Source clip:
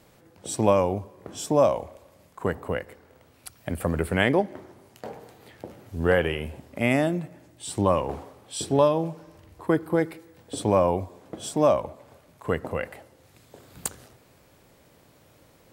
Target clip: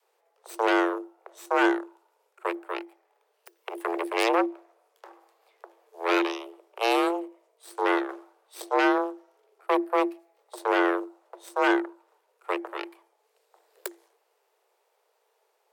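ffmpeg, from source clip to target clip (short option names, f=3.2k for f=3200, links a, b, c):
-af "adynamicequalizer=threshold=0.02:dfrequency=240:dqfactor=1.4:tfrequency=240:tqfactor=1.4:attack=5:release=100:ratio=0.375:range=2:mode=boostabove:tftype=bell,aeval=exprs='0.596*(cos(1*acos(clip(val(0)/0.596,-1,1)))-cos(1*PI/2))+0.106*(cos(3*acos(clip(val(0)/0.596,-1,1)))-cos(3*PI/2))+0.266*(cos(6*acos(clip(val(0)/0.596,-1,1)))-cos(6*PI/2))':c=same,afreqshift=340,volume=-8dB"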